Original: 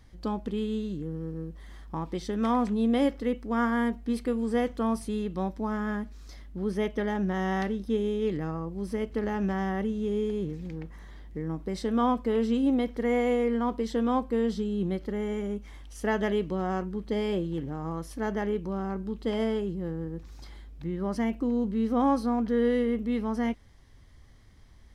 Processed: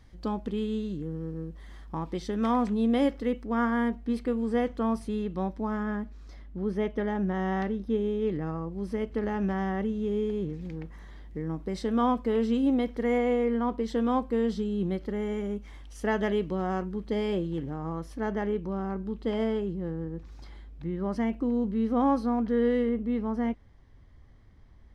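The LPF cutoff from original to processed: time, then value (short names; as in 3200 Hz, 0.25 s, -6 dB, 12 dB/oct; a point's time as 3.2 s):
LPF 6 dB/oct
7500 Hz
from 3.44 s 3400 Hz
from 5.83 s 2000 Hz
from 8.47 s 3700 Hz
from 10.61 s 7100 Hz
from 13.18 s 3000 Hz
from 13.88 s 6600 Hz
from 17.74 s 3100 Hz
from 22.89 s 1400 Hz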